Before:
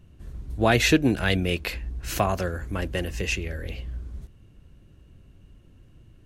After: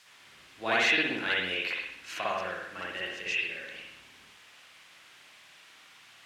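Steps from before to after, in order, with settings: added noise white -47 dBFS; BPF 100–2600 Hz; differentiator; reverb, pre-delay 54 ms, DRR -6 dB; gain +6 dB

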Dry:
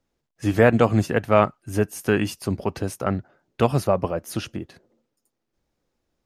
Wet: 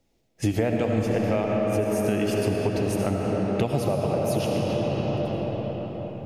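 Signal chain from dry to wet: in parallel at +1 dB: limiter -9.5 dBFS, peak gain reduction 7.5 dB; on the sum: reverb RT60 5.5 s, pre-delay 40 ms, DRR -1 dB; compressor 6:1, threshold -21 dBFS, peak gain reduction 15.5 dB; band shelf 1300 Hz -8 dB 1 oct

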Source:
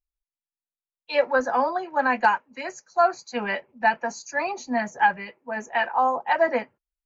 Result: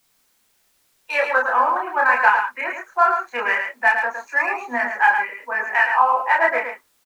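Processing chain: Wiener smoothing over 9 samples; HPF 320 Hz 24 dB/oct; band shelf 1600 Hz +11 dB; in parallel at +1 dB: compressor 6:1, threshold -25 dBFS, peak gain reduction 17 dB; on the sum: requantised 10-bit, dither triangular; chorus voices 6, 0.75 Hz, delay 29 ms, depth 4.5 ms; on a send: echo 0.11 s -6.5 dB; on the sum: gain -1 dB

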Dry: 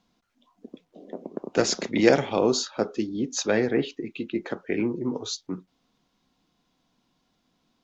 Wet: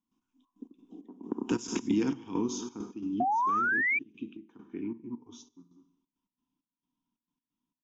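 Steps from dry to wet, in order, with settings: Doppler pass-by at 1.75, 14 m/s, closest 4.4 m; bell 1500 Hz -4.5 dB 1.2 oct; echo 0.203 s -19 dB; dynamic EQ 670 Hz, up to -5 dB, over -40 dBFS, Q 0.95; fixed phaser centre 2900 Hz, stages 8; Schroeder reverb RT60 0.83 s, combs from 31 ms, DRR 12 dB; step gate ".xxx.x.xx." 134 bpm -12 dB; small resonant body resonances 280/960/1900 Hz, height 12 dB, ringing for 25 ms; painted sound rise, 3.2–3.99, 700–2400 Hz -24 dBFS; compressor 3:1, threshold -33 dBFS, peak gain reduction 13.5 dB; gain +4.5 dB

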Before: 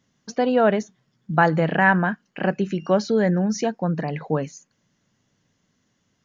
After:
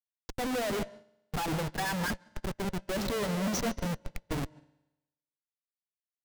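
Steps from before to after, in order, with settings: per-bin expansion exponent 3; HPF 200 Hz 12 dB/oct; high shelf 5500 Hz -3.5 dB; notches 50/100/150/200/250/300/350/400 Hz; in parallel at -1.5 dB: limiter -21 dBFS, peak gain reduction 12 dB; on the sum: thin delay 0.117 s, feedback 65%, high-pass 3800 Hz, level -4.5 dB; Schmitt trigger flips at -32.5 dBFS; on a send at -10 dB: reverb RT60 0.95 s, pre-delay 0.141 s; on the sum: upward expander 2.5:1, over -39 dBFS; gain -2.5 dB

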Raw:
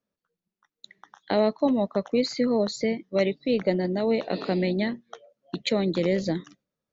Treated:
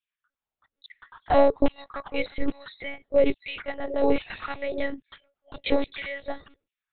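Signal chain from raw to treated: LFO high-pass saw down 1.2 Hz 270–3000 Hz; monotone LPC vocoder at 8 kHz 280 Hz

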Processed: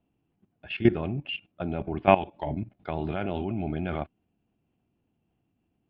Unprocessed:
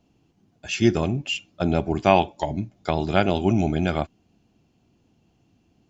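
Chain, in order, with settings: level quantiser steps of 15 dB; inverse Chebyshev low-pass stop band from 5800 Hz, stop band 40 dB

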